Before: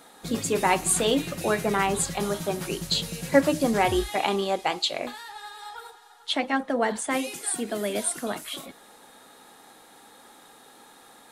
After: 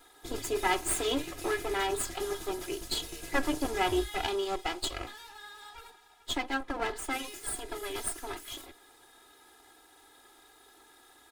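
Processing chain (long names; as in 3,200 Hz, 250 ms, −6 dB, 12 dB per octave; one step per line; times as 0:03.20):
lower of the sound and its delayed copy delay 2.4 ms
comb filter 3 ms, depth 54%
level −6.5 dB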